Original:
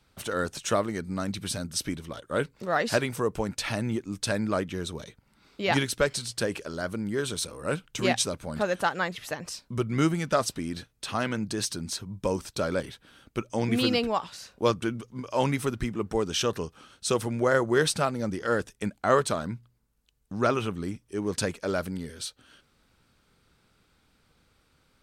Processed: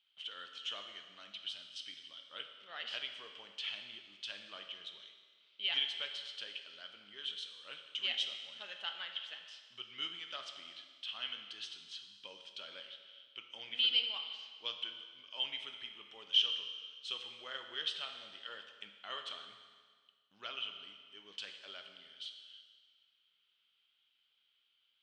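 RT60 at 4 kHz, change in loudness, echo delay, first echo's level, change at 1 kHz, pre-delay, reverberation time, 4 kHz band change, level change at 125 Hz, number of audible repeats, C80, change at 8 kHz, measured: 1.7 s, -10.5 dB, none, none, -22.0 dB, 7 ms, 1.7 s, 0.0 dB, under -40 dB, none, 8.0 dB, -26.0 dB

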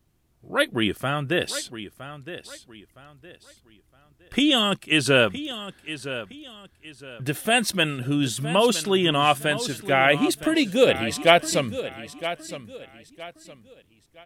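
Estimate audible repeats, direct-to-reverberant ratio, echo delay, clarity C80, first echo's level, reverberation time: 3, none, 0.964 s, none, -13.0 dB, none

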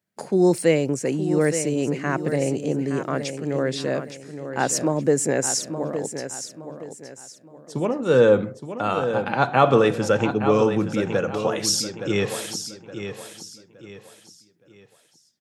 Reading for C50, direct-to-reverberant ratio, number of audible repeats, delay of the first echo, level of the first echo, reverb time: none, none, 3, 0.868 s, -9.5 dB, none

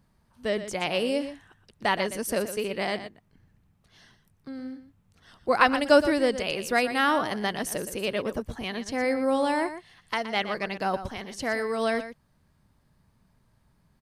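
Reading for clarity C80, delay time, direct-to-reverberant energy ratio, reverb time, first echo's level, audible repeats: none, 0.12 s, none, none, -11.5 dB, 1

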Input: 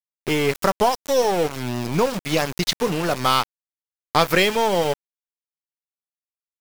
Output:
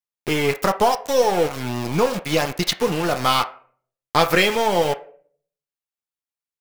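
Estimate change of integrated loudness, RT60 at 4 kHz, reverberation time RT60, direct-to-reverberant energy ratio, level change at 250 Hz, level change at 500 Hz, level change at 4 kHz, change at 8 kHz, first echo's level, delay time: +0.5 dB, 0.30 s, 0.50 s, 5.0 dB, 0.0 dB, +1.0 dB, +0.5 dB, 0.0 dB, none, none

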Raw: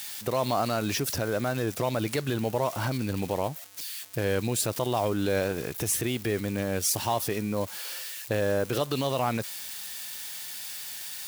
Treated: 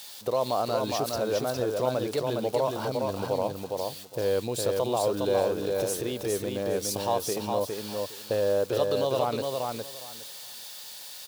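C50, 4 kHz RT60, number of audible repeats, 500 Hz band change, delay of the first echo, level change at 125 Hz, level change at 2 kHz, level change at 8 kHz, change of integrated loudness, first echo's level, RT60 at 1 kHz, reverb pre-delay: none, none, 3, +3.5 dB, 0.41 s, -5.5 dB, -6.5 dB, -4.5 dB, +0.5 dB, -3.5 dB, none, none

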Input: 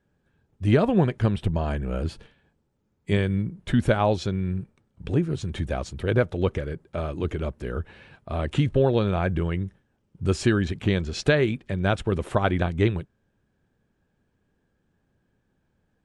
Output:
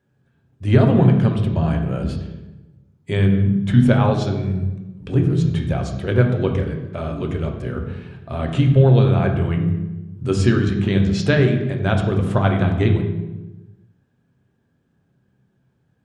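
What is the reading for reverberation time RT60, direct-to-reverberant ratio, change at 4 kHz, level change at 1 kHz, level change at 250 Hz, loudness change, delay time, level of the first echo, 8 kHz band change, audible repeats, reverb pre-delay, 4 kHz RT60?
1.1 s, 3.0 dB, +2.5 dB, +3.0 dB, +7.0 dB, +6.5 dB, none, none, n/a, none, 3 ms, 0.80 s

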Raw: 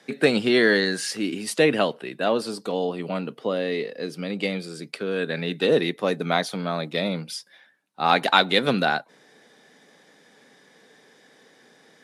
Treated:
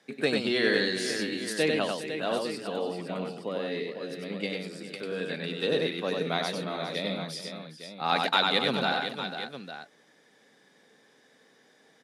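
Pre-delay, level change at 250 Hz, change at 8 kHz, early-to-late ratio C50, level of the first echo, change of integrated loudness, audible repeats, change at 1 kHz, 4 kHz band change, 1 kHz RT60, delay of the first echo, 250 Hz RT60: none, -6.5 dB, -5.0 dB, none, -3.5 dB, -6.0 dB, 4, -6.0 dB, -3.0 dB, none, 96 ms, none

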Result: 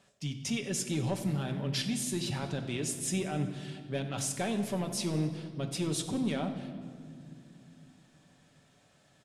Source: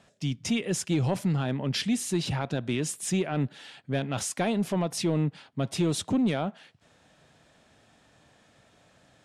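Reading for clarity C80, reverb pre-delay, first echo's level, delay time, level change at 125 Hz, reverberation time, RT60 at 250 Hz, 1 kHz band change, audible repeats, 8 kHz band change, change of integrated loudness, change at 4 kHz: 10.0 dB, 5 ms, -17.5 dB, 94 ms, -5.0 dB, 2.3 s, 4.0 s, -5.5 dB, 1, -1.5 dB, -5.0 dB, -3.0 dB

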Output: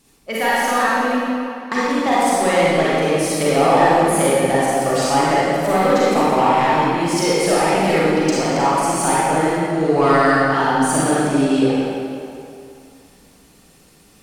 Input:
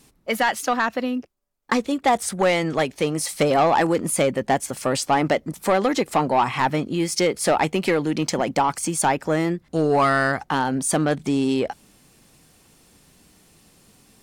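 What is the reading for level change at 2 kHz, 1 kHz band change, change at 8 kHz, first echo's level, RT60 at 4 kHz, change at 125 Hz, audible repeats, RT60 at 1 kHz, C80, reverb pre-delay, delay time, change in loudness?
+5.0 dB, +5.5 dB, +3.0 dB, none, 1.9 s, +4.0 dB, none, 2.6 s, -3.0 dB, 34 ms, none, +5.0 dB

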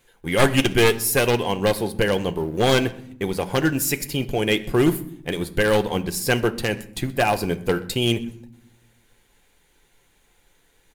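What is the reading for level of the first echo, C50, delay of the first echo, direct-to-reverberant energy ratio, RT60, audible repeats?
-23.5 dB, 16.5 dB, 0.126 s, 8.0 dB, 0.70 s, 1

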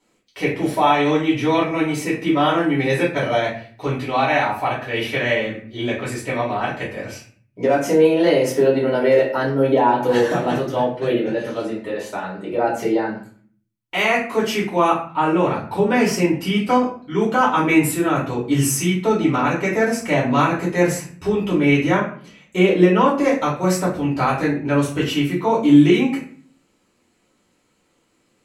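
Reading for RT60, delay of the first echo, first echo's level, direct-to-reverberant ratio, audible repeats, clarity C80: 0.45 s, none, none, -7.5 dB, none, 11.0 dB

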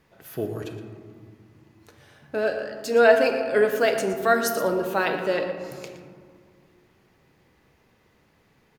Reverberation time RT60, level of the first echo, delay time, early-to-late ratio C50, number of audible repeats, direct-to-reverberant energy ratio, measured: 2.1 s, -13.0 dB, 0.117 s, 6.0 dB, 1, 4.5 dB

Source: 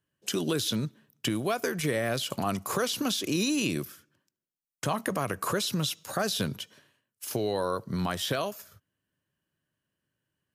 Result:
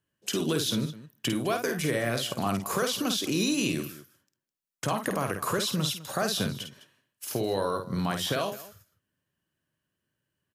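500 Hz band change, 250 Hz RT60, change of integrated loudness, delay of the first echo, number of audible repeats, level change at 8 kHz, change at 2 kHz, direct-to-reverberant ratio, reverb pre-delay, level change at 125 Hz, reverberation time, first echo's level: +1.0 dB, none, +1.0 dB, 51 ms, 2, +1.0 dB, +1.0 dB, none, none, +1.0 dB, none, -6.5 dB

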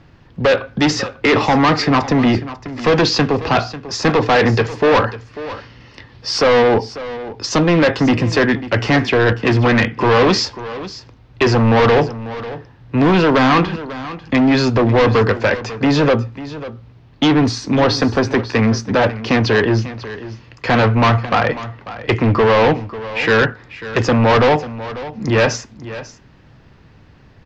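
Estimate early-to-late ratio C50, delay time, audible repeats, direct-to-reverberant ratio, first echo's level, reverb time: none, 0.544 s, 1, none, -15.0 dB, none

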